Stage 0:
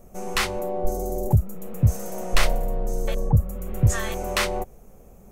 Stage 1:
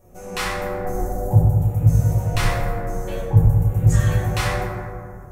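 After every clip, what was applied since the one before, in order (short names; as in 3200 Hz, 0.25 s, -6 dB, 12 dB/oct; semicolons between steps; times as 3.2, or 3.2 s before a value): reverb RT60 2.2 s, pre-delay 4 ms, DRR -8 dB; gain -7 dB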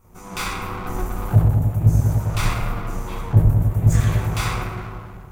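minimum comb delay 0.83 ms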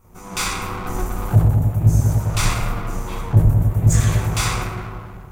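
dynamic EQ 7200 Hz, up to +8 dB, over -47 dBFS, Q 0.77; in parallel at -9.5 dB: overloaded stage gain 11.5 dB; on the sum: gain -1 dB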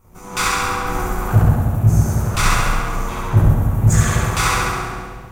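dynamic EQ 1400 Hz, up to +7 dB, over -40 dBFS, Q 1.3; on a send: flutter echo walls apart 11.8 m, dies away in 1.2 s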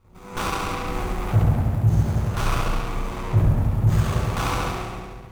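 in parallel at -3 dB: limiter -9 dBFS, peak gain reduction 7 dB; on the sum: running maximum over 17 samples; gain -8.5 dB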